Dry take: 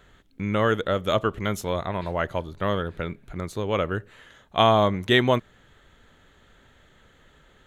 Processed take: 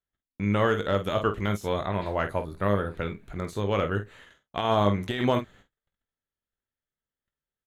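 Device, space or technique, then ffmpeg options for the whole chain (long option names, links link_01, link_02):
de-esser from a sidechain: -filter_complex "[0:a]agate=range=-39dB:threshold=-49dB:ratio=16:detection=peak,asettb=1/sr,asplit=3[link_01][link_02][link_03];[link_01]atrim=end=2.234[link_04];[link_02]atrim=start=2.23:end=2.95,asetpts=PTS-STARTPTS,afade=type=in:duration=0.004:curve=qsin,afade=type=out:start_time=0.716:duration=0.004:curve=qsin,equalizer=frequency=3150:width_type=o:width=0.33:gain=-12,equalizer=frequency=6300:width_type=o:width=0.33:gain=-7,equalizer=frequency=10000:width_type=o:width=0.33:gain=10[link_05];[link_03]atrim=start=2.946[link_06];[link_04][link_05]acrossfade=duration=0.004:curve1=hsin:curve2=qsin[link_07];[link_07][link_06]acrossfade=duration=0.004:curve1=qsin:curve2=hsin,aecho=1:1:20|49:0.316|0.299,asplit=2[link_08][link_09];[link_09]highpass=5700,apad=whole_len=340120[link_10];[link_08][link_10]sidechaincompress=threshold=-44dB:ratio=8:attack=2.5:release=25,volume=-1dB"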